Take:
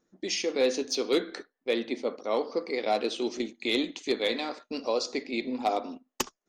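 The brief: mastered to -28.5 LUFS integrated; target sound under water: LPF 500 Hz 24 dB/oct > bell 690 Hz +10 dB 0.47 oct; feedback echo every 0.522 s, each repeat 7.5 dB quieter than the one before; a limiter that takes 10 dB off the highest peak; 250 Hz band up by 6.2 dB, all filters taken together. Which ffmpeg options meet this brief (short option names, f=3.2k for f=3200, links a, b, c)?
-af "equalizer=f=250:t=o:g=7.5,alimiter=limit=-22dB:level=0:latency=1,lowpass=f=500:w=0.5412,lowpass=f=500:w=1.3066,equalizer=f=690:t=o:w=0.47:g=10,aecho=1:1:522|1044|1566|2088|2610:0.422|0.177|0.0744|0.0312|0.0131,volume=4dB"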